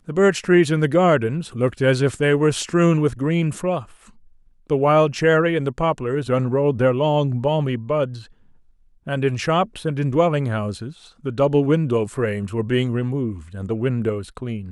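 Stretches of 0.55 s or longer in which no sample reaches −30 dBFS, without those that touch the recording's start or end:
0:03.83–0:04.70
0:08.20–0:09.07

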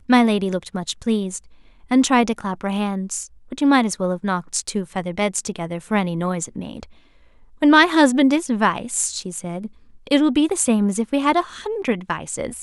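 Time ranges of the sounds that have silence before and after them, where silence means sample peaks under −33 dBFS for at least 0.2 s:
0:01.91–0:03.26
0:03.52–0:06.84
0:07.62–0:09.67

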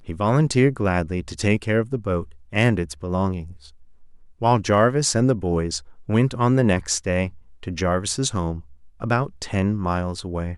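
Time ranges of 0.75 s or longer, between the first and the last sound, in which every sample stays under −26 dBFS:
0:03.42–0:04.42

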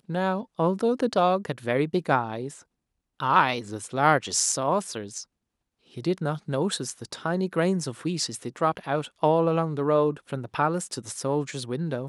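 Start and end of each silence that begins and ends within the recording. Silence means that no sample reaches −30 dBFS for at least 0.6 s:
0:02.48–0:03.20
0:05.20–0:05.98

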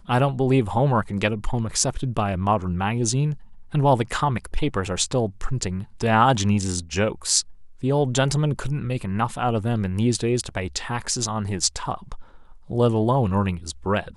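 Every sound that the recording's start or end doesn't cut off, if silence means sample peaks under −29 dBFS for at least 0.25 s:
0:03.74–0:07.42
0:07.83–0:12.20

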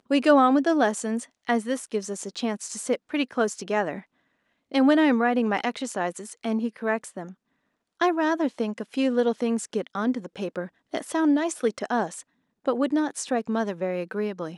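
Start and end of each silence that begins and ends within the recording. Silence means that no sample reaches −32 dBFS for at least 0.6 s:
0:03.99–0:04.72
0:07.26–0:08.01

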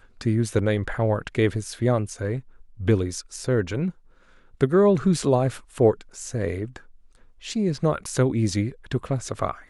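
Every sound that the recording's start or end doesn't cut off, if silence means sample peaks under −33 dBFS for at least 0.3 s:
0:02.80–0:03.90
0:04.61–0:06.77

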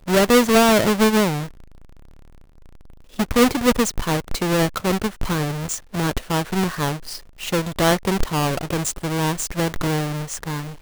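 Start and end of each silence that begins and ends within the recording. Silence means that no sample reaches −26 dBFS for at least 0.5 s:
0:01.44–0:03.19

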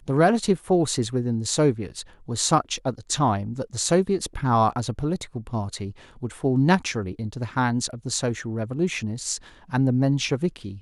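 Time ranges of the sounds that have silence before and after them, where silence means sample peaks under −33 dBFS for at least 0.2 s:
0:02.28–0:05.91
0:06.23–0:09.37

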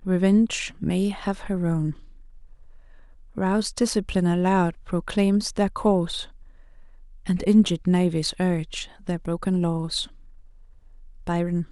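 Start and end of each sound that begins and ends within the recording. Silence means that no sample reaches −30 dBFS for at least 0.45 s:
0:03.38–0:06.24
0:07.27–0:10.05

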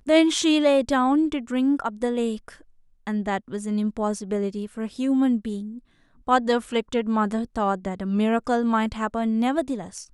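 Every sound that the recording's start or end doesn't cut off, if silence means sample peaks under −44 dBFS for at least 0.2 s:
0:03.07–0:05.79

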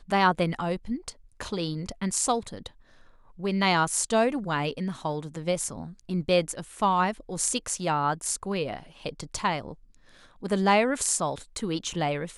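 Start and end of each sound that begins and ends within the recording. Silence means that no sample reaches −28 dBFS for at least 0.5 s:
0:03.44–0:09.69

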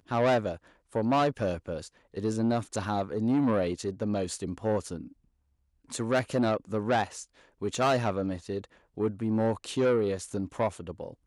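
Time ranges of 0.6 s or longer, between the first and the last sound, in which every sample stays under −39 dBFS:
0:05.06–0:05.91

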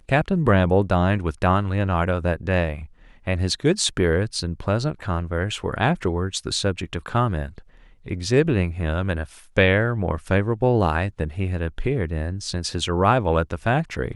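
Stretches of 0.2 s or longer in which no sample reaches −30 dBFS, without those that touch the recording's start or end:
0:02.85–0:03.27
0:07.58–0:08.06
0:09.25–0:09.57

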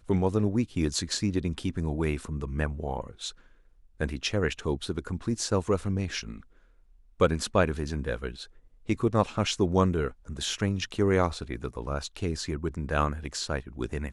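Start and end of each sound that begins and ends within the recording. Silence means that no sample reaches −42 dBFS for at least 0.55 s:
0:04.00–0:06.40

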